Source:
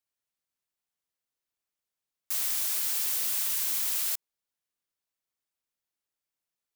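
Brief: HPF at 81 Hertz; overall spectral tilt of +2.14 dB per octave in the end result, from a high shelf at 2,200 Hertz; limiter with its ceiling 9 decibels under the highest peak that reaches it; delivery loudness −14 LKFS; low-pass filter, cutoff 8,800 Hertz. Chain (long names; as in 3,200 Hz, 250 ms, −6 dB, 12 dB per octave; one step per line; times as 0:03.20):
high-pass filter 81 Hz
low-pass filter 8,800 Hz
high-shelf EQ 2,200 Hz +3 dB
level +22.5 dB
brickwall limiter −6.5 dBFS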